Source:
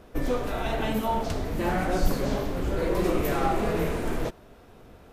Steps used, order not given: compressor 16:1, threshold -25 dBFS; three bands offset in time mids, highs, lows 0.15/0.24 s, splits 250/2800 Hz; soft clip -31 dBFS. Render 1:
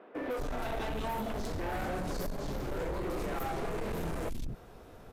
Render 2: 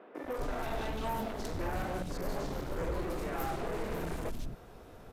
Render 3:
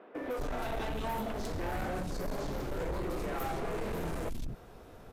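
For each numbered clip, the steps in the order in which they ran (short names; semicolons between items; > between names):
three bands offset in time > compressor > soft clip; compressor > soft clip > three bands offset in time; compressor > three bands offset in time > soft clip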